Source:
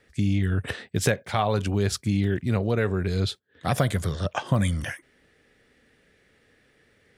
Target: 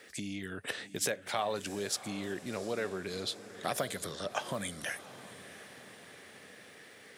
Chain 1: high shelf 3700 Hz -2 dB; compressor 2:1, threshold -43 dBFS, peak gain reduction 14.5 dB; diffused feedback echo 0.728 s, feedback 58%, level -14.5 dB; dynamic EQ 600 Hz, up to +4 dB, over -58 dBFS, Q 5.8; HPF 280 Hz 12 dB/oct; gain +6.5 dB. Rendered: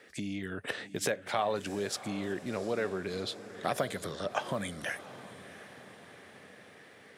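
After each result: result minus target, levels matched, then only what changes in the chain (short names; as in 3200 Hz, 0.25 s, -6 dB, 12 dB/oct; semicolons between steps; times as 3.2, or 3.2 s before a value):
8000 Hz band -5.0 dB; compressor: peak gain reduction -3.5 dB
change: high shelf 3700 Hz +7.5 dB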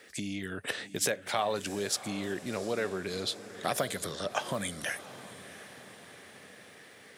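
compressor: peak gain reduction -3 dB
change: compressor 2:1, threshold -49 dBFS, peak gain reduction 17.5 dB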